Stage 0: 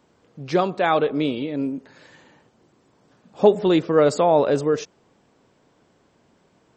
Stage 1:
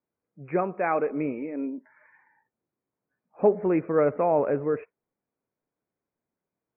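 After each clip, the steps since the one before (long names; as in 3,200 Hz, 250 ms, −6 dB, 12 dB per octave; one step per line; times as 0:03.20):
Chebyshev low-pass filter 2,500 Hz, order 8
noise reduction from a noise print of the clip's start 22 dB
level −5.5 dB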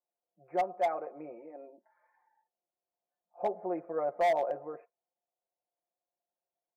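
resonant band-pass 700 Hz, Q 5
comb filter 5.7 ms, depth 88%
gain into a clipping stage and back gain 23 dB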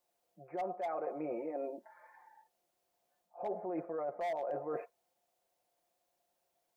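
brickwall limiter −31.5 dBFS, peak gain reduction 8.5 dB
reversed playback
downward compressor 10 to 1, threshold −47 dBFS, peak gain reduction 14 dB
reversed playback
level +12 dB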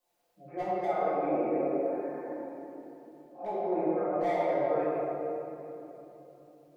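convolution reverb RT60 3.4 s, pre-delay 4 ms, DRR −12.5 dB
level −4 dB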